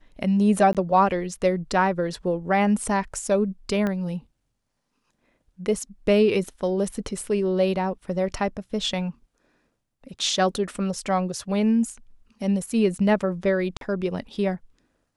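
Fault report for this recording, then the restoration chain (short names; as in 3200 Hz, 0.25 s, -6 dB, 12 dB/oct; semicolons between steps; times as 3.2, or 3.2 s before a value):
0.73–0.75 gap 17 ms
3.87 pop -15 dBFS
13.77–13.81 gap 42 ms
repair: de-click; interpolate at 0.73, 17 ms; interpolate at 13.77, 42 ms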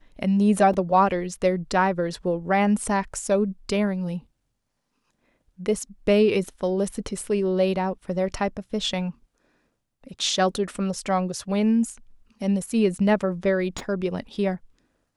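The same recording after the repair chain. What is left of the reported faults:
3.87 pop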